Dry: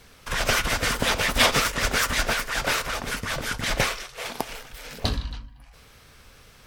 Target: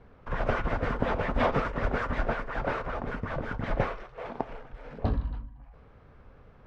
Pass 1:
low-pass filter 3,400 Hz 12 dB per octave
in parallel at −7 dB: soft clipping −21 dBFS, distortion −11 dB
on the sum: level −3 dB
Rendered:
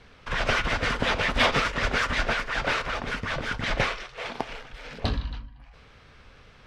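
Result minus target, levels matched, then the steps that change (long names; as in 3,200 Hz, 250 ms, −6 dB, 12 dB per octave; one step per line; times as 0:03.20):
4,000 Hz band +13.0 dB
change: low-pass filter 1,000 Hz 12 dB per octave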